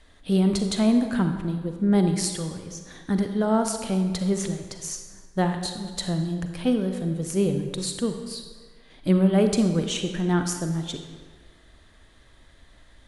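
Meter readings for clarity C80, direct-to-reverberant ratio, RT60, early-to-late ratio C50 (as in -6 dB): 8.0 dB, 6.0 dB, 1.6 s, 6.5 dB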